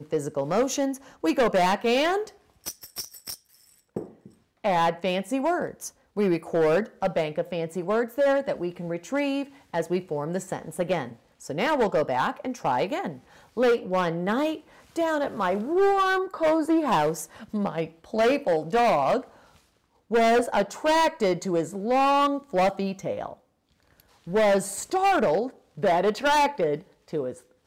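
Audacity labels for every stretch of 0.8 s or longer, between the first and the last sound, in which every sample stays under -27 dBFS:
19.200000	20.120000	silence
23.260000	24.310000	silence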